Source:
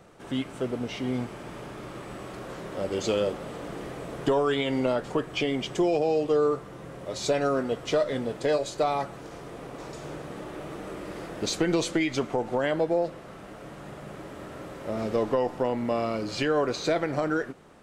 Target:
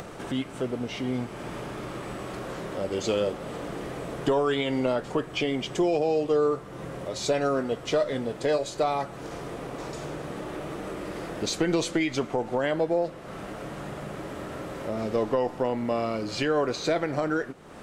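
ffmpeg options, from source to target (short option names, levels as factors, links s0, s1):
-af "acompressor=mode=upward:threshold=0.0355:ratio=2.5"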